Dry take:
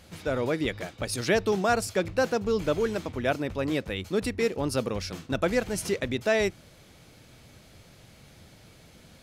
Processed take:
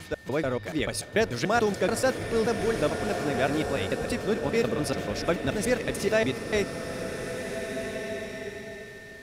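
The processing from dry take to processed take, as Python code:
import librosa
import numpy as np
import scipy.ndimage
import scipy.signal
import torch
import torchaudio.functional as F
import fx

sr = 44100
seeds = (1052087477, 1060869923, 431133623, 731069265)

p1 = fx.block_reorder(x, sr, ms=145.0, group=2)
p2 = p1 + 10.0 ** (-49.0 / 20.0) * np.sin(2.0 * np.pi * 1800.0 * np.arange(len(p1)) / sr)
p3 = p2 + fx.echo_single(p2, sr, ms=394, db=-21.0, dry=0)
y = fx.rev_bloom(p3, sr, seeds[0], attack_ms=1850, drr_db=5.5)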